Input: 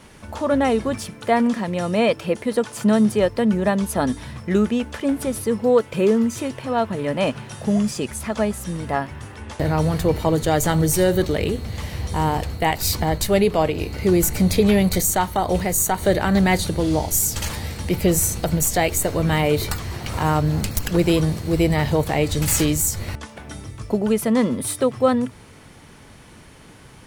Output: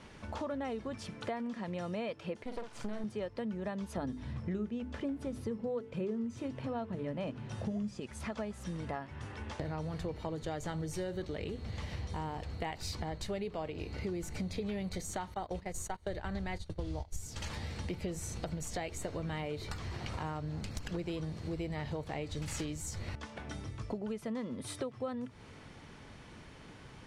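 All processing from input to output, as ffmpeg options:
-filter_complex "[0:a]asettb=1/sr,asplit=3[s0][s1][s2];[s0]atrim=end=2.434[s3];[s1]atrim=start=2.43:end=3.04,asetpts=PTS-STARTPTS,afade=t=in:d=0.004:c=qsin,afade=t=out:st=0.606:d=0.004:c=qsin,aeval=exprs='max(val(0),0)':c=same,asplit=2[s4][s5];[s5]adelay=47,volume=0.422[s6];[s4][s6]amix=inputs=2:normalize=0,atrim=end_sample=26901[s7];[s2]atrim=start=3.036[s8];[s3][s7]acrossfade=d=0.004:c1=hsin:c2=qsin[s9];[s9][s8]acrossfade=d=0.004:c1=qsin:c2=hsin,asettb=1/sr,asplit=3[s10][s11][s12];[s10]atrim=end=3.974[s13];[s11]atrim=start=3.97:end=8,asetpts=PTS-STARTPTS,afade=t=in:d=0.004:c=qsin,afade=t=out:st=4.026:d=0.004:c=qsin,lowshelf=f=460:g=10,bandreject=f=50:t=h:w=6,bandreject=f=100:t=h:w=6,bandreject=f=150:t=h:w=6,bandreject=f=200:t=h:w=6,bandreject=f=250:t=h:w=6,bandreject=f=300:t=h:w=6,bandreject=f=350:t=h:w=6,bandreject=f=400:t=h:w=6,bandreject=f=450:t=h:w=6[s14];[s12]atrim=start=7.996[s15];[s13][s14]acrossfade=d=0.004:c1=hsin:c2=qsin[s16];[s16][s15]acrossfade=d=0.004:c1=qsin:c2=hsin,asettb=1/sr,asplit=3[s17][s18][s19];[s17]atrim=end=15.344[s20];[s18]atrim=start=15.34:end=17.26,asetpts=PTS-STARTPTS,afade=t=in:d=0.004:c=qsin,afade=t=out:st=1.916:d=0.004:c=qsin,agate=range=0.112:threshold=0.0708:ratio=16:release=100:detection=peak,asubboost=boost=10.5:cutoff=83[s21];[s19]atrim=start=17.256[s22];[s20][s21]acrossfade=d=0.004:c1=hsin:c2=qsin[s23];[s23][s22]acrossfade=d=0.004:c1=qsin:c2=hsin,lowpass=5800,acompressor=threshold=0.0316:ratio=5,volume=0.473"

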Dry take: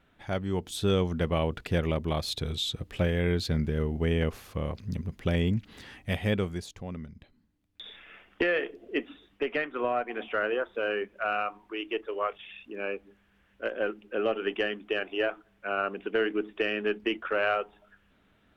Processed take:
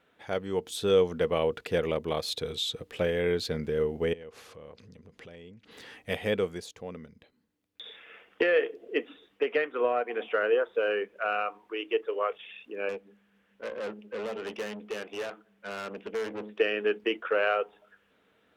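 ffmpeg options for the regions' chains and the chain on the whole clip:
-filter_complex "[0:a]asettb=1/sr,asplit=3[s0][s1][s2];[s0]atrim=end=4.134[s3];[s1]atrim=start=4.13:end=5.71,asetpts=PTS-STARTPTS,afade=t=in:d=0.004:c=qsin,afade=t=out:st=1.576:d=0.004:c=qsin,lowpass=8600,acompressor=threshold=0.00891:ratio=12:attack=3.2:release=140:knee=1:detection=peak[s4];[s2]atrim=start=5.706[s5];[s3][s4]acrossfade=d=0.004:c1=hsin:c2=qsin[s6];[s6][s5]acrossfade=d=0.004:c1=qsin:c2=hsin,asettb=1/sr,asplit=3[s7][s8][s9];[s7]atrim=end=12.894[s10];[s8]atrim=start=12.89:end=16.6,asetpts=PTS-STARTPTS,afade=t=in:d=0.004:c=qsin,afade=t=out:st=3.706:d=0.004:c=qsin,equalizer=f=210:w=5.1:g=14.5,aeval=exprs='(tanh(44.7*val(0)+0.55)-tanh(0.55))/44.7':c=same[s11];[s9]atrim=start=16.596[s12];[s10][s11]acrossfade=d=0.004:c1=hsin:c2=qsin[s13];[s13][s12]acrossfade=d=0.004:c1=qsin:c2=hsin,highpass=f=340:p=1,equalizer=f=470:t=o:w=0.27:g=10.5"

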